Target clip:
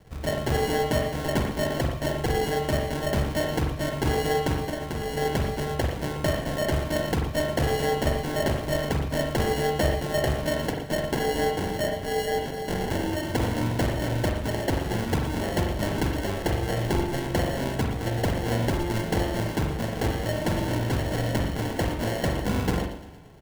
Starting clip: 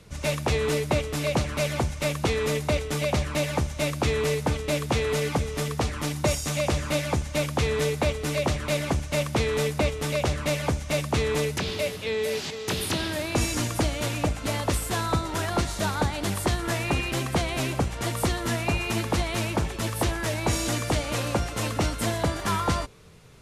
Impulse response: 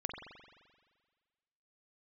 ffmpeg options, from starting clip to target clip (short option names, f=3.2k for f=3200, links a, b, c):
-filter_complex "[0:a]asettb=1/sr,asplit=3[a][b][c];[a]atrim=end=4.614[d];[b]atrim=start=4.61:end=5.17,asetpts=PTS-STARTPTS,afade=t=in:d=0.004:c=qsin,afade=t=out:st=0.556:d=0.004:c=qsin,acompressor=threshold=-27dB:ratio=6[e];[c]atrim=start=5.166[f];[d][e]acrossfade=d=0.004:c1=hsin:c2=qsin[g];[g][f]acrossfade=d=0.004:c1=qsin:c2=hsin,asettb=1/sr,asplit=3[h][i][j];[h]atrim=end=10.654[k];[i]atrim=start=10.65:end=11.58,asetpts=PTS-STARTPTS,afade=t=in:d=0.004:c=qsin,afade=t=out:st=0.926:d=0.004:c=qsin,highpass=160[l];[j]atrim=start=11.576[m];[k][l]acrossfade=d=0.004:c1=hsin:c2=qsin[n];[n][m]acrossfade=d=0.004:c1=qsin:c2=hsin,acrusher=samples=36:mix=1:aa=0.000001,aecho=1:1:115|230|345|460|575|690:0.2|0.112|0.0626|0.035|0.0196|0.011[o];[1:a]atrim=start_sample=2205,afade=t=out:st=0.18:d=0.01,atrim=end_sample=8379[p];[o][p]afir=irnorm=-1:irlink=0"